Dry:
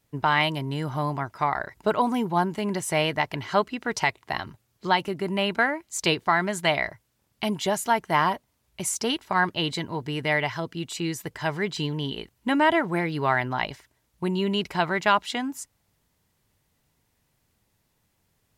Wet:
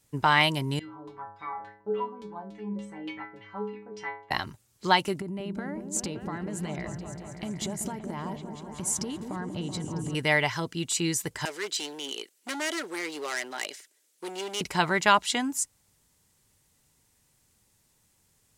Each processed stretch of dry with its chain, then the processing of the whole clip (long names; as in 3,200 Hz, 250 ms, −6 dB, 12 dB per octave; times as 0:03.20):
0:00.79–0:04.31: notch filter 630 Hz, Q 6.3 + auto-filter low-pass saw down 3.5 Hz 400–3,600 Hz + stiff-string resonator 100 Hz, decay 0.76 s, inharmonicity 0.008
0:05.20–0:10.15: tilt shelving filter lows +8.5 dB, about 640 Hz + downward compressor 12 to 1, threshold −31 dBFS + echo whose low-pass opens from repeat to repeat 190 ms, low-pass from 400 Hz, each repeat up 1 octave, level −3 dB
0:11.45–0:14.61: parametric band 950 Hz −11 dB 0.93 octaves + hard clipping −27.5 dBFS + high-pass filter 350 Hz 24 dB per octave
whole clip: parametric band 8,100 Hz +10.5 dB 1.3 octaves; notch filter 670 Hz, Q 12